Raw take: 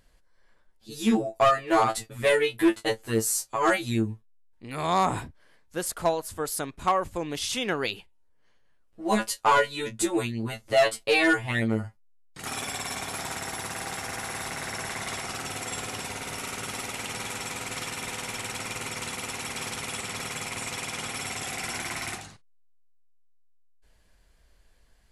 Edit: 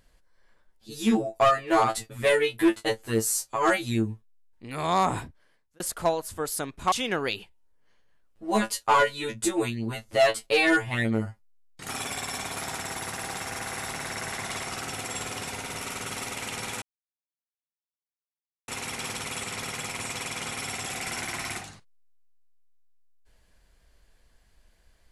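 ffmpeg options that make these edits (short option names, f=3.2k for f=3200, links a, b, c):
-filter_complex "[0:a]asplit=5[a][b][c][d][e];[a]atrim=end=5.8,asetpts=PTS-STARTPTS,afade=t=out:st=5.18:d=0.62[f];[b]atrim=start=5.8:end=6.922,asetpts=PTS-STARTPTS,afade=t=in:d=0.004:c=hsin[g];[c]atrim=start=7.488:end=17.39,asetpts=PTS-STARTPTS,afade=t=out:st=9.898:d=0.004:c=hsin[h];[d]atrim=start=17.39:end=19.25,asetpts=PTS-STARTPTS,volume=0[i];[e]atrim=start=19.25,asetpts=PTS-STARTPTS,afade=t=in:d=0.004:c=hsin[j];[f][g]concat=n=2:v=0:a=1[k];[h][i][j]concat=n=3:v=0:a=1[l];[k][l]acrossfade=d=0.004:c1=hsin:c2=hsin"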